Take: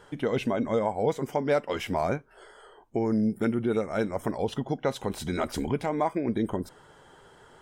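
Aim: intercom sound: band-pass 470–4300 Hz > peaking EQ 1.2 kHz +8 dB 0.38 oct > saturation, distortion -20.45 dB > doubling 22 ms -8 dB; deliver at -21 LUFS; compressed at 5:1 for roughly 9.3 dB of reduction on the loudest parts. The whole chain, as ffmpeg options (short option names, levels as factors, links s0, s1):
-filter_complex "[0:a]acompressor=threshold=0.0251:ratio=5,highpass=470,lowpass=4300,equalizer=f=1200:t=o:w=0.38:g=8,asoftclip=threshold=0.0562,asplit=2[s0][s1];[s1]adelay=22,volume=0.398[s2];[s0][s2]amix=inputs=2:normalize=0,volume=8.91"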